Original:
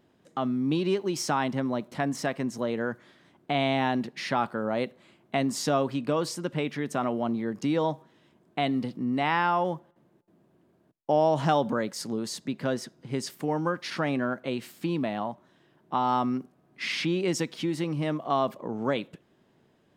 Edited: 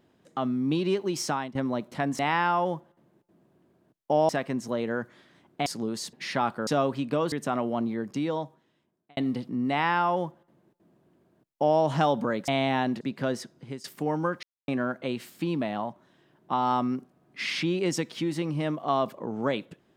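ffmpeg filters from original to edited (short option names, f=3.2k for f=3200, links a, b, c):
-filter_complex "[0:a]asplit=14[a][b][c][d][e][f][g][h][i][j][k][l][m][n];[a]atrim=end=1.55,asetpts=PTS-STARTPTS,afade=t=out:st=1.26:d=0.29:silence=0.133352[o];[b]atrim=start=1.55:end=2.192,asetpts=PTS-STARTPTS,afade=t=in:d=0.004:c=hsin:silence=0.133352[p];[c]atrim=start=9.178:end=11.282[q];[d]atrim=start=2.188:end=3.562[r];[e]atrim=start=11.958:end=12.432[s];[f]atrim=start=4.088:end=4.632[t];[g]atrim=start=5.628:end=6.282[u];[h]atrim=start=6.798:end=8.65,asetpts=PTS-STARTPTS,afade=t=out:st=0.572:d=1.28[v];[i]atrim=start=8.65:end=11.962,asetpts=PTS-STARTPTS,afade=t=in:d=0.004:c=hsin[w];[j]atrim=start=3.558:end=4.092[x];[k]atrim=start=12.428:end=13.26,asetpts=PTS-STARTPTS,afade=t=out:st=0.552:d=0.28:silence=0.125893[y];[l]atrim=start=13.26:end=13.85,asetpts=PTS-STARTPTS,afade=t=in:d=0.004:c=hsin:silence=0.125893,afade=t=out:st=0.586:d=0.004:c=hsin[z];[m]atrim=start=13.85:end=14.1,asetpts=PTS-STARTPTS,volume=0[aa];[n]atrim=start=14.1,asetpts=PTS-STARTPTS,afade=t=in:d=0.004:c=hsin[ab];[o][p]concat=n=2:v=0:a=1[ac];[ac][q]acrossfade=d=0.004:c1=hsin:c2=hsin[ad];[ad][r]acrossfade=d=0.004:c1=hsin:c2=hsin[ae];[ae][s]acrossfade=d=0.004:c1=hsin:c2=hsin[af];[af][t]acrossfade=d=0.004:c1=hsin:c2=hsin[ag];[ag][u]acrossfade=d=0.004:c1=hsin:c2=hsin[ah];[v][w]concat=n=2:v=0:a=1[ai];[ah][ai]acrossfade=d=0.004:c1=hsin:c2=hsin[aj];[aj][x]acrossfade=d=0.004:c1=hsin:c2=hsin[ak];[y][z][aa][ab]concat=n=4:v=0:a=1[al];[ak][al]acrossfade=d=0.004:c1=hsin:c2=hsin"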